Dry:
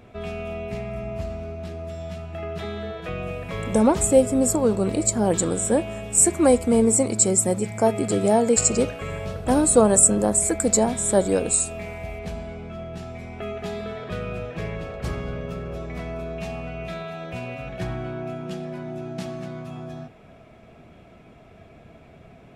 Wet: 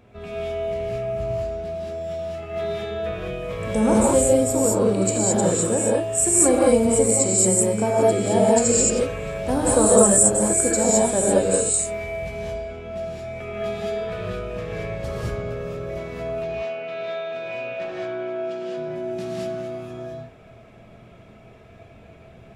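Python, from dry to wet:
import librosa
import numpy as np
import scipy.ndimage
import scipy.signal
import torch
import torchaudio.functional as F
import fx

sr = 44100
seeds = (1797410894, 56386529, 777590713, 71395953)

y = fx.bandpass_edges(x, sr, low_hz=320.0, high_hz=fx.line((16.4, 4100.0), (18.76, 5800.0)), at=(16.4, 18.76), fade=0.02)
y = fx.rev_gated(y, sr, seeds[0], gate_ms=240, shape='rising', drr_db=-5.5)
y = y * 10.0 ** (-5.0 / 20.0)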